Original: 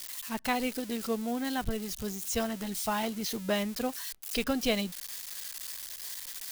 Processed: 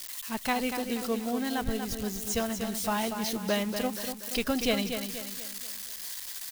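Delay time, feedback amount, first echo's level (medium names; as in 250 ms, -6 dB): 239 ms, 44%, -7.5 dB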